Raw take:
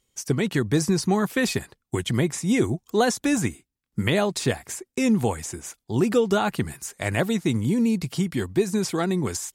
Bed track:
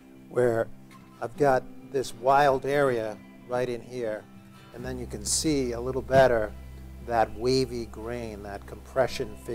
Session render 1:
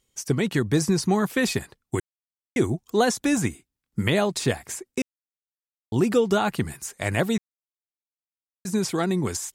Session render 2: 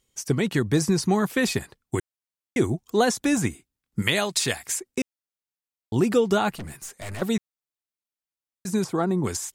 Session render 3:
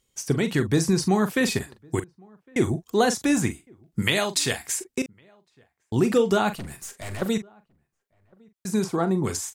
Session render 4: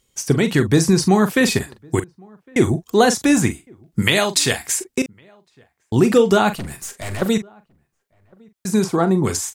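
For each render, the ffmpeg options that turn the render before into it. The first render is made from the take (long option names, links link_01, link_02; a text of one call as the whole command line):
ffmpeg -i in.wav -filter_complex "[0:a]asplit=7[link_01][link_02][link_03][link_04][link_05][link_06][link_07];[link_01]atrim=end=2,asetpts=PTS-STARTPTS,afade=type=out:start_time=1.996:duration=0.004:curve=hsin[link_08];[link_02]atrim=start=2:end=2.56,asetpts=PTS-STARTPTS,volume=0[link_09];[link_03]atrim=start=2.56:end=5.02,asetpts=PTS-STARTPTS,afade=type=in:duration=0.004:curve=hsin,afade=type=out:start_time=2.456:duration=0.004:curve=hsin[link_10];[link_04]atrim=start=5.02:end=5.92,asetpts=PTS-STARTPTS,volume=0[link_11];[link_05]atrim=start=5.92:end=7.38,asetpts=PTS-STARTPTS,afade=type=in:duration=0.004:curve=hsin,afade=type=out:start_time=1.456:duration=0.004:curve=hsin[link_12];[link_06]atrim=start=7.38:end=8.65,asetpts=PTS-STARTPTS,volume=0[link_13];[link_07]atrim=start=8.65,asetpts=PTS-STARTPTS,afade=type=in:duration=0.004:curve=hsin[link_14];[link_08][link_09][link_10][link_11][link_12][link_13][link_14]concat=n=7:v=0:a=1" out.wav
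ffmpeg -i in.wav -filter_complex "[0:a]asettb=1/sr,asplit=3[link_01][link_02][link_03];[link_01]atrim=end=4.024[link_04];[link_02]atrim=start=4.02:end=4.8,asetpts=PTS-STARTPTS,afade=type=in:duration=0.004:curve=qsin,afade=type=out:start_time=0.776:duration=0.004:curve=qsin,tiltshelf=frequency=1200:gain=-6.5[link_05];[link_03]atrim=start=4.796[link_06];[link_04][link_05]acrossfade=duration=0.004:curve1=hsin:curve2=qsin[link_07];[link_07][link_06]acrossfade=duration=0.004:curve1=qsin:curve2=hsin,asettb=1/sr,asplit=3[link_08][link_09][link_10];[link_08]atrim=end=6.534[link_11];[link_09]atrim=start=6.53:end=7.22,asetpts=PTS-STARTPTS,afade=type=in:duration=0.004:curve=qsin,afade=type=out:start_time=0.686:duration=0.004:curve=qsin,aeval=exprs='(tanh(39.8*val(0)+0.3)-tanh(0.3))/39.8':channel_layout=same[link_12];[link_10]atrim=start=7.216[link_13];[link_11][link_12]acrossfade=duration=0.004:curve1=hsin:curve2=qsin[link_14];[link_14][link_13]acrossfade=duration=0.004:curve1=qsin:curve2=hsin,asettb=1/sr,asplit=3[link_15][link_16][link_17];[link_15]atrim=end=8.844[link_18];[link_16]atrim=start=8.84:end=9.24,asetpts=PTS-STARTPTS,afade=type=in:duration=0.004:curve=qsin,afade=type=out:start_time=0.396:duration=0.004:curve=qsin,highshelf=frequency=1600:width_type=q:width=1.5:gain=-9[link_19];[link_17]atrim=start=9.236[link_20];[link_18][link_19]acrossfade=duration=0.004:curve1=hsin:curve2=qsin[link_21];[link_21][link_20]acrossfade=duration=0.004:curve1=qsin:curve2=hsin" out.wav
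ffmpeg -i in.wav -filter_complex "[0:a]asplit=2[link_01][link_02];[link_02]adelay=42,volume=-11dB[link_03];[link_01][link_03]amix=inputs=2:normalize=0,asplit=2[link_04][link_05];[link_05]adelay=1108,volume=-29dB,highshelf=frequency=4000:gain=-24.9[link_06];[link_04][link_06]amix=inputs=2:normalize=0" out.wav
ffmpeg -i in.wav -af "volume=6.5dB,alimiter=limit=-1dB:level=0:latency=1" out.wav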